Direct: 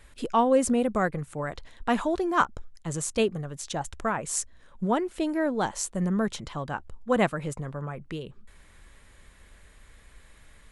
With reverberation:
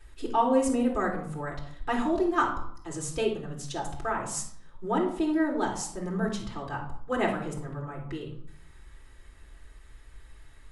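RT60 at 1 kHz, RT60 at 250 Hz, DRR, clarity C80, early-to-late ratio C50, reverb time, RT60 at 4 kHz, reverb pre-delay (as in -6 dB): 0.65 s, 0.90 s, -3.0 dB, 11.0 dB, 6.5 dB, 0.60 s, 0.45 s, 3 ms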